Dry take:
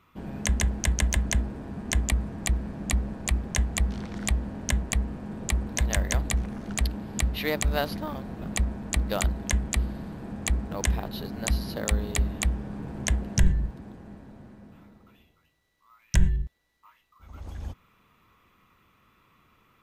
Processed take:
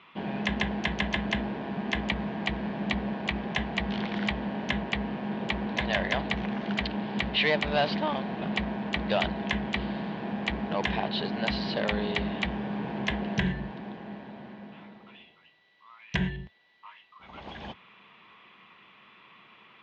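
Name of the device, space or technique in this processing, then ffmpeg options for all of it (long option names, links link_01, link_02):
overdrive pedal into a guitar cabinet: -filter_complex "[0:a]asplit=2[link_01][link_02];[link_02]highpass=frequency=720:poles=1,volume=23dB,asoftclip=type=tanh:threshold=-8.5dB[link_03];[link_01][link_03]amix=inputs=2:normalize=0,lowpass=frequency=4100:poles=1,volume=-6dB,highpass=85,equalizer=frequency=90:width_type=q:width=4:gain=-10,equalizer=frequency=200:width_type=q:width=4:gain=4,equalizer=frequency=280:width_type=q:width=4:gain=-5,equalizer=frequency=510:width_type=q:width=4:gain=-4,equalizer=frequency=1300:width_type=q:width=4:gain=-9,equalizer=frequency=3100:width_type=q:width=4:gain=4,lowpass=frequency=4000:width=0.5412,lowpass=frequency=4000:width=1.3066,volume=-4dB"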